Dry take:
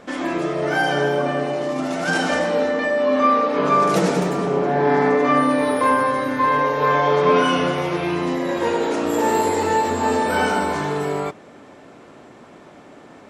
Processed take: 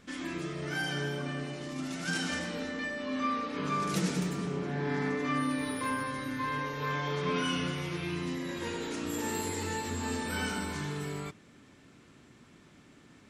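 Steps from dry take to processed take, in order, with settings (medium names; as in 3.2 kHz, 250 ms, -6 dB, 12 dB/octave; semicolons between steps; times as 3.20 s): amplifier tone stack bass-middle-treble 6-0-2; trim +8.5 dB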